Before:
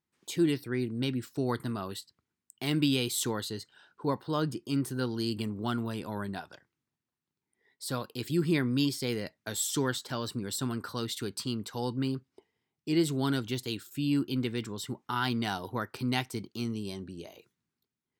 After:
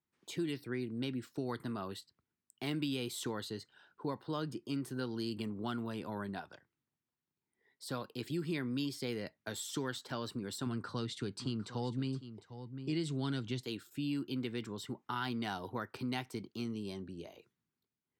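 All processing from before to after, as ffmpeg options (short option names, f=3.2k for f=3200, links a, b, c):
-filter_complex "[0:a]asettb=1/sr,asplit=3[a][b][c];[a]atrim=end=10.664[d];[b]atrim=start=10.66:end=13.61,asetpts=PTS-STARTPTS,afade=t=in:d=0.004:c=qsin,afade=t=out:st=2.946:d=0.004:c=qsin,lowpass=f=8.9k:w=0.5412,lowpass=f=8.9k:w=1.3066,equalizer=f=110:t=o:w=1.7:g=10.5,aecho=1:1:754:0.168,atrim=end_sample=130095[e];[c]atrim=start=13.606[f];[d][e]acrossfade=d=0.004:c1=hsin:c2=qsin[g];[g][f]acrossfade=d=0.004:c1=qsin:c2=hsin,highshelf=f=5.1k:g=-9,acrossover=split=150|2100|7500[h][i][j][k];[h]acompressor=threshold=-48dB:ratio=4[l];[i]acompressor=threshold=-32dB:ratio=4[m];[j]acompressor=threshold=-39dB:ratio=4[n];[k]acompressor=threshold=-44dB:ratio=4[o];[l][m][n][o]amix=inputs=4:normalize=0,volume=-3dB"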